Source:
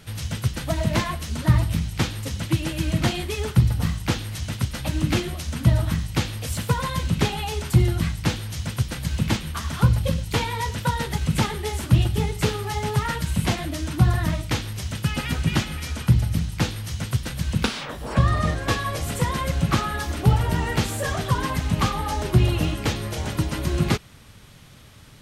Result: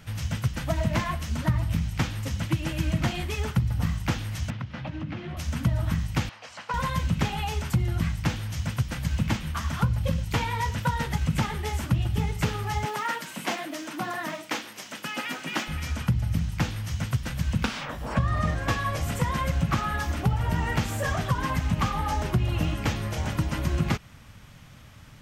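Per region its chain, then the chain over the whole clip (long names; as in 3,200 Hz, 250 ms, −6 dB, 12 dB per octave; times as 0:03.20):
0:04.50–0:05.37: high-pass filter 91 Hz 24 dB per octave + downward compressor 10 to 1, threshold −27 dBFS + high-frequency loss of the air 250 metres
0:06.29–0:06.74: Chebyshev band-pass filter 840–5,400 Hz + spectral tilt −2.5 dB per octave + notch filter 3,500 Hz, Q 15
0:12.85–0:15.68: high-pass filter 270 Hz 24 dB per octave + noise that follows the level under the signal 33 dB
whole clip: graphic EQ with 15 bands 400 Hz −7 dB, 4,000 Hz −6 dB, 10,000 Hz −9 dB; downward compressor 6 to 1, threshold −20 dBFS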